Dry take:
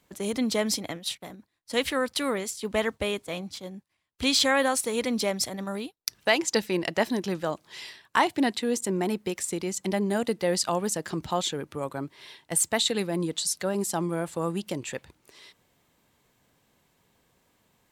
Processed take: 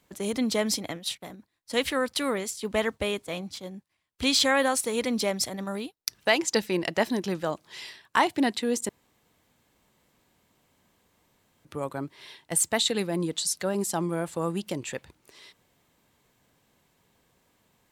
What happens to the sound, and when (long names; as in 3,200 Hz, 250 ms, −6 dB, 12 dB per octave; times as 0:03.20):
0:08.89–0:11.65: fill with room tone